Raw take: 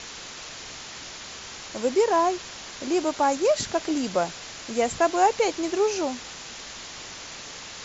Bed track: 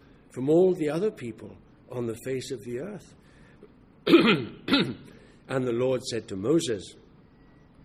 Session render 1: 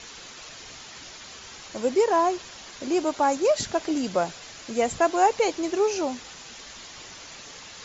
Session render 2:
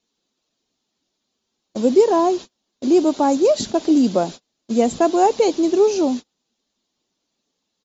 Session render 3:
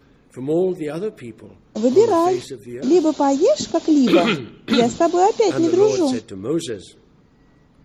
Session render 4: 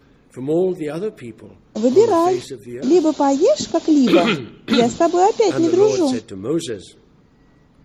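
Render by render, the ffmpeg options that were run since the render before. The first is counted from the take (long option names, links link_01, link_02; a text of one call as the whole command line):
ffmpeg -i in.wav -af "afftdn=noise_reduction=6:noise_floor=-40" out.wav
ffmpeg -i in.wav -af "agate=range=-36dB:threshold=-35dB:ratio=16:detection=peak,firequalizer=gain_entry='entry(110,0);entry(220,14);entry(480,6);entry(1400,-3);entry(2000,-5);entry(3800,6);entry(5400,2)':delay=0.05:min_phase=1" out.wav
ffmpeg -i in.wav -i bed.wav -filter_complex "[1:a]volume=1.5dB[link_01];[0:a][link_01]amix=inputs=2:normalize=0" out.wav
ffmpeg -i in.wav -af "volume=1dB" out.wav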